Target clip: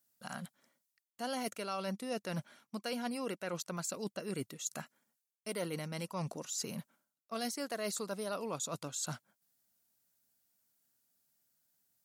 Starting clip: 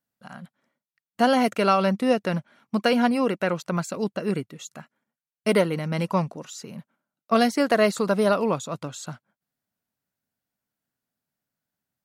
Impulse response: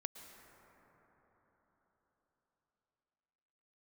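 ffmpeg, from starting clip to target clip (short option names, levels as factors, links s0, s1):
-af "bass=f=250:g=-3,treble=f=4000:g=13,areverse,acompressor=threshold=0.0178:ratio=8,areverse,volume=0.891"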